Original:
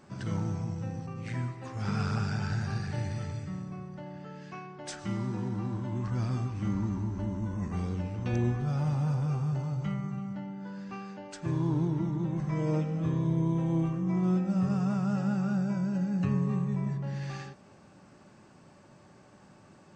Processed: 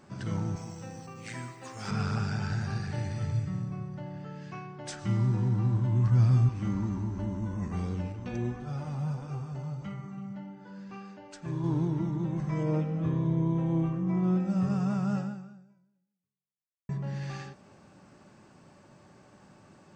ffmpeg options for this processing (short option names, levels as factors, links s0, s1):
-filter_complex "[0:a]asettb=1/sr,asplit=3[s0][s1][s2];[s0]atrim=end=0.564[s3];[s1]atrim=start=0.56:end=1.91,asetpts=PTS-STARTPTS,afade=t=in:d=0.004:c=qsin,afade=t=out:st=1.346:d=0.004:c=qsin,aemphasis=mode=production:type=bsi[s4];[s2]atrim=start=1.906[s5];[s3][s4]acrossfade=d=0.004:c1=hsin:c2=qsin[s6];[s6][s5]acrossfade=d=0.004:c1=qsin:c2=hsin,asettb=1/sr,asplit=3[s7][s8][s9];[s7]atrim=end=3.214[s10];[s8]atrim=start=3.21:end=6.49,asetpts=PTS-STARTPTS,afade=t=in:d=0.004:c=qsin,afade=t=out:st=3.276:d=0.004:c=qsin,equalizer=f=120:t=o:w=0.56:g=10.5[s11];[s9]atrim=start=6.486[s12];[s10][s11]acrossfade=d=0.004:c1=hsin:c2=qsin[s13];[s13][s12]acrossfade=d=0.004:c1=qsin:c2=hsin,asettb=1/sr,asplit=3[s14][s15][s16];[s14]atrim=end=8.124[s17];[s15]atrim=start=8.12:end=11.64,asetpts=PTS-STARTPTS,afade=t=in:d=0.004:c=qsin,afade=t=out:st=3.516:d=0.004:c=qsin,flanger=delay=2.2:depth=3.5:regen=-42:speed=1.6:shape=triangular[s18];[s16]atrim=start=11.636[s19];[s17][s18]acrossfade=d=0.004:c1=hsin:c2=qsin[s20];[s20][s19]acrossfade=d=0.004:c1=qsin:c2=hsin,asettb=1/sr,asplit=3[s21][s22][s23];[s21]atrim=end=12.634[s24];[s22]atrim=start=12.63:end=14.4,asetpts=PTS-STARTPTS,afade=t=in:d=0.004:c=qsin,afade=t=out:st=1.766:d=0.004:c=qsin,aemphasis=mode=reproduction:type=50fm[s25];[s23]atrim=start=14.396[s26];[s24][s25]acrossfade=d=0.004:c1=hsin:c2=qsin[s27];[s27][s26]acrossfade=d=0.004:c1=qsin:c2=hsin,asplit=2[s28][s29];[s28]atrim=end=16.89,asetpts=PTS-STARTPTS,afade=t=out:st=15.17:d=1.72:c=exp[s30];[s29]atrim=start=16.89,asetpts=PTS-STARTPTS,afade=t=in:d=0.004:c=hsin[s31];[s30][s31]concat=n=2:v=0:a=1"